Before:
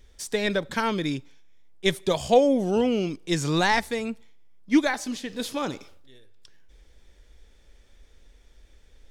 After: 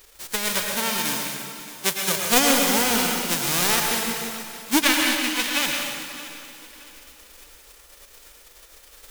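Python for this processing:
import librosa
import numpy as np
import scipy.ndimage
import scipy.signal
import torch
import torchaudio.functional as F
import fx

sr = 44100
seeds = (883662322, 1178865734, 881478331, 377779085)

y = fx.envelope_flatten(x, sr, power=0.1)
y = fx.highpass(y, sr, hz=91.0, slope=12, at=(0.61, 2.17))
y = fx.peak_eq(y, sr, hz=2600.0, db=12.0, octaves=2.0, at=(4.82, 5.66))
y = fx.echo_feedback(y, sr, ms=623, feedback_pct=35, wet_db=-16.5)
y = fx.rev_plate(y, sr, seeds[0], rt60_s=1.8, hf_ratio=0.85, predelay_ms=90, drr_db=0.5)
y = F.gain(torch.from_numpy(y), -1.0).numpy()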